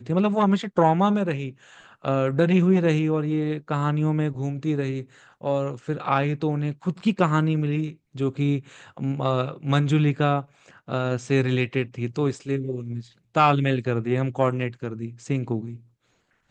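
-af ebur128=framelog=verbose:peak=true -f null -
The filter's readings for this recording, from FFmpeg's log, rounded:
Integrated loudness:
  I:         -24.1 LUFS
  Threshold: -34.6 LUFS
Loudness range:
  LRA:         3.5 LU
  Threshold: -44.6 LUFS
  LRA low:   -26.1 LUFS
  LRA high:  -22.6 LUFS
True peak:
  Peak:       -5.2 dBFS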